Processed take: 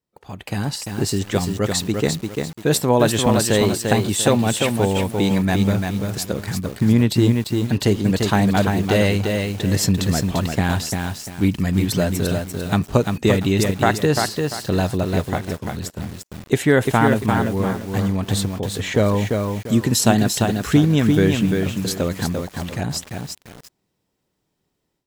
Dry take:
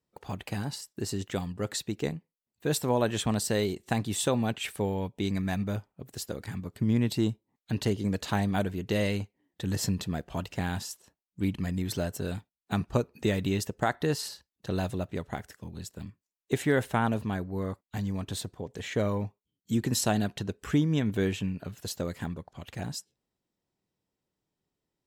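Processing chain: AGC gain up to 12 dB; lo-fi delay 0.345 s, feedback 35%, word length 6-bit, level -4 dB; gain -1 dB

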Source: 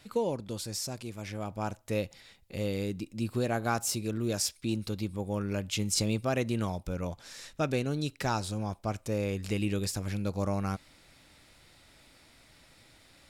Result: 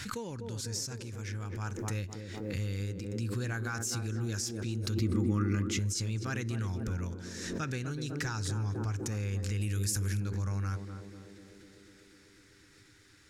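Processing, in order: fifteen-band EQ 100 Hz +12 dB, 630 Hz -12 dB, 1600 Hz +11 dB, 6300 Hz +10 dB; on a send: narrowing echo 0.249 s, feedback 80%, band-pass 350 Hz, level -5 dB; on the sum: limiter -17.5 dBFS, peak gain reduction 9 dB; 5.01–5.79 small resonant body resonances 260/1200/2000 Hz, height 15 dB, ringing for 30 ms; 9.61–10.2 bell 11000 Hz +15 dB 0.86 oct; backwards sustainer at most 34 dB/s; gain -7.5 dB

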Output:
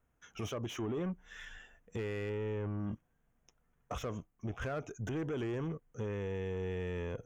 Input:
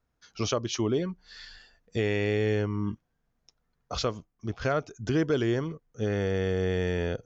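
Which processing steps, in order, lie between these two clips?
2.29–2.8 high shelf 2800 Hz -11 dB; limiter -27 dBFS, peak gain reduction 10 dB; soft clip -32.5 dBFS, distortion -15 dB; Butterworth band-stop 4500 Hz, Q 1.5; slew limiter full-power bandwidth 25 Hz; gain +1 dB

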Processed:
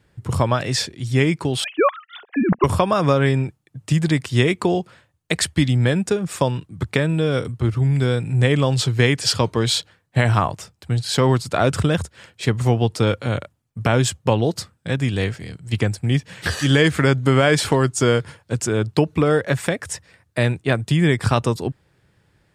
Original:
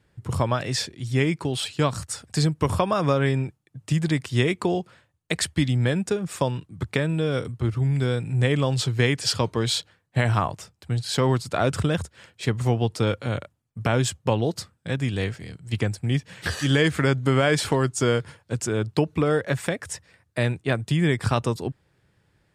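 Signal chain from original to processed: 1.64–2.64 sine-wave speech; gain +4.5 dB

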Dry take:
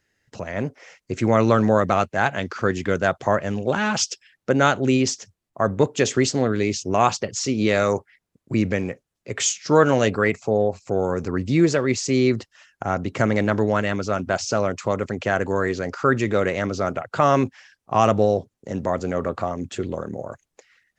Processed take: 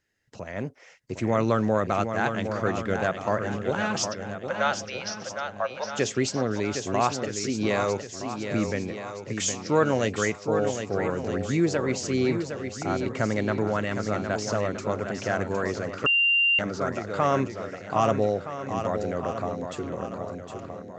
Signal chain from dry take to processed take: 4.11–5.94 Chebyshev band-pass 540–5800 Hz, order 5; swung echo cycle 1.269 s, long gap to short 1.5:1, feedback 36%, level -7.5 dB; 16.06–16.59 bleep 2780 Hz -12 dBFS; gain -6 dB

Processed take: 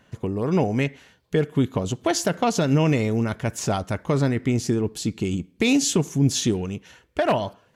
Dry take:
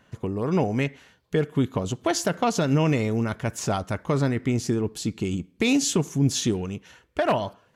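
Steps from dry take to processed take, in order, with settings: bell 1200 Hz -2.5 dB; gain +2 dB

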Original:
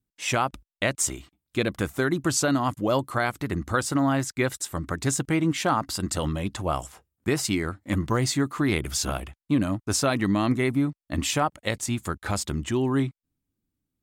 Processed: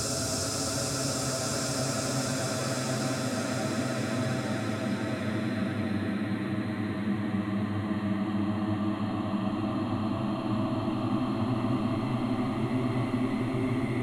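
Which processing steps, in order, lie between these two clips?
low shelf 200 Hz +6 dB; level quantiser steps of 17 dB; hard clip -24.5 dBFS, distortion -11 dB; Paulstretch 25×, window 0.50 s, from 9.99; gain +4 dB

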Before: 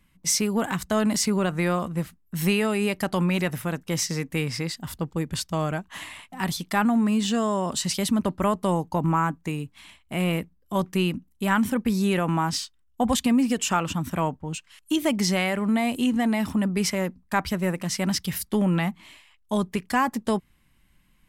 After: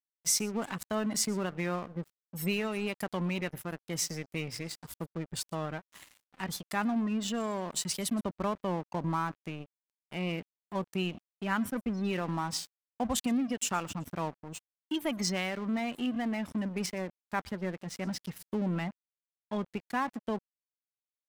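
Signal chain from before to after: spectral gate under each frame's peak -30 dB strong; high shelf 5900 Hz +7.5 dB, from 16.86 s -5.5 dB; echo 0.119 s -23.5 dB; crossover distortion -35 dBFS; gain -7.5 dB

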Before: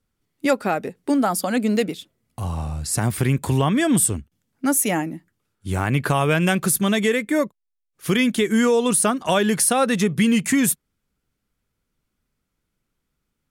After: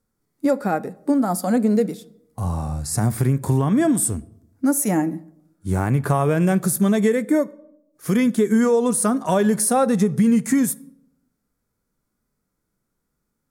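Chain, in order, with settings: bell 2900 Hz -14 dB 0.95 oct; harmonic-percussive split percussive -9 dB; low shelf 77 Hz -8.5 dB; compressor, threshold -21 dBFS, peak gain reduction 6.5 dB; on a send: reverb RT60 0.80 s, pre-delay 4 ms, DRR 16.5 dB; on the sum: gain +6.5 dB

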